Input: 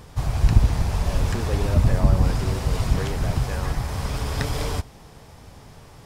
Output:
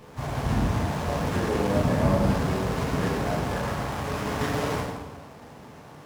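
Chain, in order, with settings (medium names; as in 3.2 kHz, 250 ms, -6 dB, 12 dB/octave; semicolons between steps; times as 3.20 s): high-pass 150 Hz 12 dB/octave; plate-style reverb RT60 1.3 s, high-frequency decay 0.6×, DRR -6 dB; sliding maximum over 9 samples; trim -3.5 dB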